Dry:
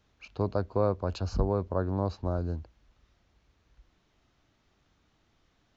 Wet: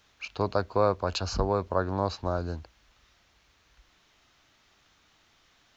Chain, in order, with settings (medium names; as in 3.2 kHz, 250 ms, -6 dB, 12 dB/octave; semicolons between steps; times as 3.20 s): tilt shelf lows -7 dB, about 680 Hz; trim +4.5 dB